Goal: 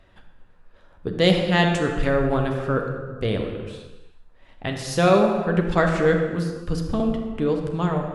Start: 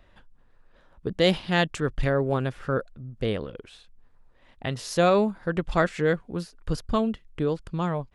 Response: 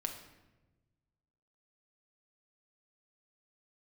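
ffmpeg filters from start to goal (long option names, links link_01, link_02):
-filter_complex "[0:a]asettb=1/sr,asplit=3[link_01][link_02][link_03];[link_01]atrim=end=6.544[link_04];[link_02]atrim=start=6.54:end=7,asetpts=PTS-STARTPTS,afade=type=in:duration=0.004:curve=qsin,afade=type=out:start_time=0.456:duration=0.004:curve=qsin,acrossover=split=440[link_05][link_06];[link_06]acompressor=threshold=-36dB:ratio=4[link_07];[link_05][link_07]amix=inputs=2:normalize=0[link_08];[link_03]atrim=start=6.996[link_09];[link_04][link_08]acrossfade=duration=0.004:curve1=hsin:curve2=qsin[link_10];[link_10][link_09]acrossfade=duration=0.004:curve1=qsin:curve2=hsin[link_11];[1:a]atrim=start_sample=2205,afade=type=out:start_time=0.32:duration=0.01,atrim=end_sample=14553,asetrate=23814,aresample=44100[link_12];[link_11][link_12]afir=irnorm=-1:irlink=0"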